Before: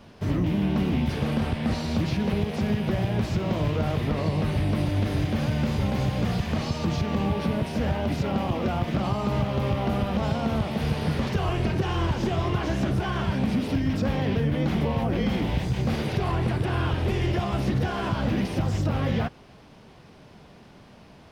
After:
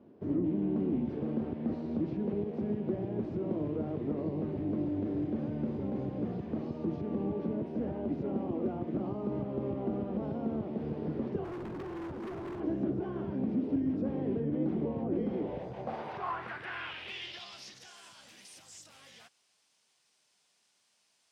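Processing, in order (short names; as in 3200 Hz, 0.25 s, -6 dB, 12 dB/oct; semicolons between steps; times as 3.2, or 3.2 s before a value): band-pass sweep 330 Hz -> 8000 Hz, 15.2–17.99; 11.44–12.6 hard clip -38 dBFS, distortion -15 dB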